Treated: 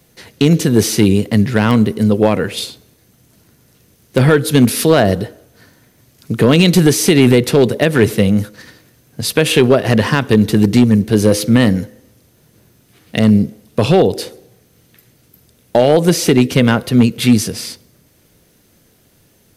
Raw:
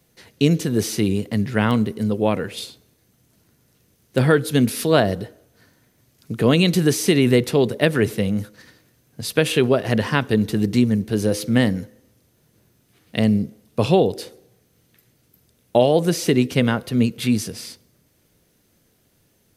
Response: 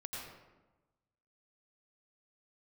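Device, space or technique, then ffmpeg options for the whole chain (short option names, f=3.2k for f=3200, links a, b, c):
limiter into clipper: -af "alimiter=limit=-8dB:level=0:latency=1:release=146,asoftclip=type=hard:threshold=-11.5dB,volume=9dB"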